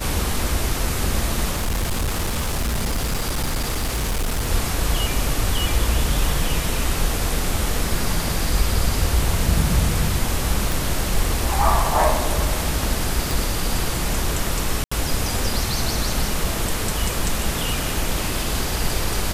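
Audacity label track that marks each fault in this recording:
1.510000	4.510000	clipping −18.5 dBFS
10.720000	10.720000	click
13.310000	13.310000	click
14.840000	14.910000	drop-out 75 ms

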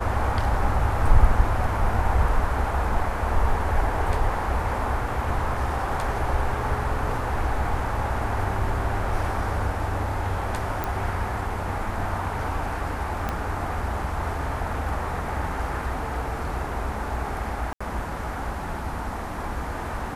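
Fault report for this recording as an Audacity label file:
10.840000	10.840000	click
13.290000	13.290000	click −13 dBFS
17.730000	17.800000	drop-out 75 ms

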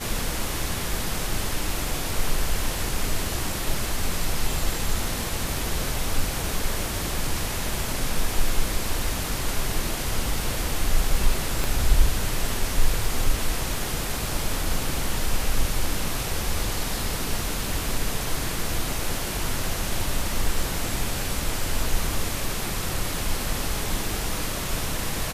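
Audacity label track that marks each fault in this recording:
11.640000	11.640000	click

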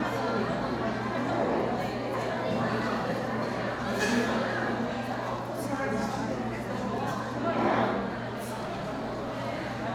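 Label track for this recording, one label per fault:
8.300000	9.400000	clipping −30.5 dBFS

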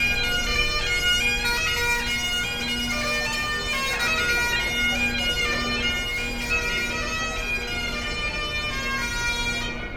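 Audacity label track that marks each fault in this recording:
1.930000	4.030000	clipping −21 dBFS
6.060000	6.520000	clipping −24 dBFS

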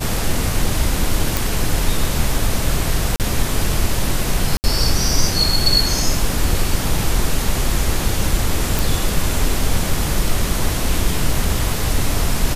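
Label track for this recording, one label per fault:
1.370000	1.370000	click
3.160000	3.200000	drop-out 38 ms
4.570000	4.640000	drop-out 69 ms
8.790000	8.790000	click

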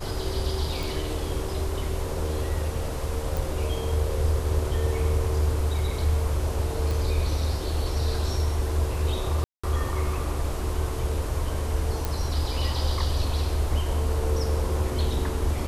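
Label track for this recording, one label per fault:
0.830000	0.830000	click
3.370000	3.370000	click
6.910000	6.910000	click
9.440000	9.630000	drop-out 195 ms
12.050000	12.050000	click

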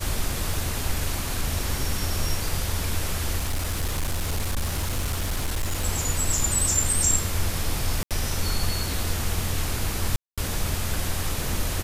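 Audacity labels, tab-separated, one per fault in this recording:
0.540000	0.540000	click
3.370000	5.850000	clipping −21.5 dBFS
8.030000	8.110000	drop-out 77 ms
10.160000	10.380000	drop-out 216 ms

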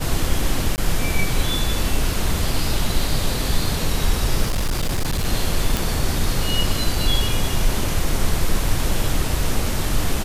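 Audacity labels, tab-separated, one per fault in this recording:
0.760000	0.780000	drop-out 19 ms
4.440000	5.260000	clipping −17 dBFS
5.770000	5.770000	click

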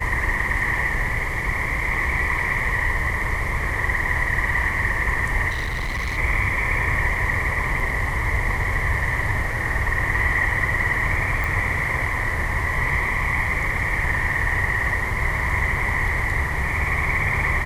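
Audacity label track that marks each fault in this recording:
5.500000	6.180000	clipping −22.5 dBFS
11.440000	11.440000	click

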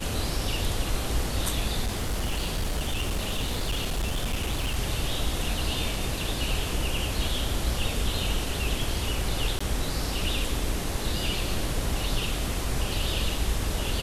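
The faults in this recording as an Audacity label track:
1.840000	4.770000	clipping −23.5 dBFS
9.590000	9.610000	drop-out 15 ms

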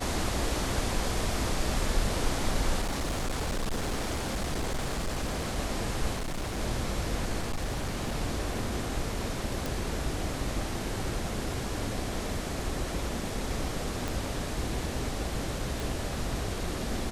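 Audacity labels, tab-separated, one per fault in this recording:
2.810000	5.580000	clipping −27 dBFS
6.150000	6.590000	clipping −29.5 dBFS
7.410000	8.150000	clipping −27 dBFS
9.660000	9.660000	click
14.080000	14.080000	click
15.800000	15.800000	click

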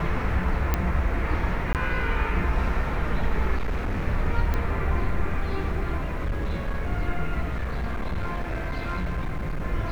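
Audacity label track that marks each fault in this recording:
0.740000	0.740000	click −9 dBFS
1.730000	1.750000	drop-out 18 ms
3.560000	4.060000	clipping −22 dBFS
4.540000	4.540000	click −15 dBFS
6.000000	6.890000	clipping −22.5 dBFS
7.490000	9.620000	clipping −24 dBFS

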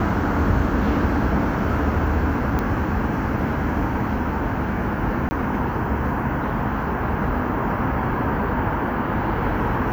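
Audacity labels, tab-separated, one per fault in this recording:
2.590000	2.590000	click −12 dBFS
5.290000	5.310000	drop-out 20 ms

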